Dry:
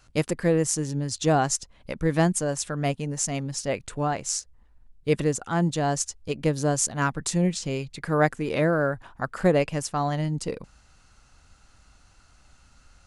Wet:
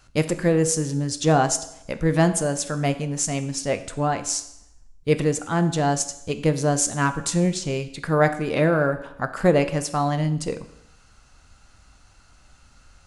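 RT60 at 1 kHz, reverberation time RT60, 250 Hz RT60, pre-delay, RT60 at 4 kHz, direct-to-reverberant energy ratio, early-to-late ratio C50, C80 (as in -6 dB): 0.80 s, 0.80 s, 0.80 s, 11 ms, 0.80 s, 9.0 dB, 13.0 dB, 15.5 dB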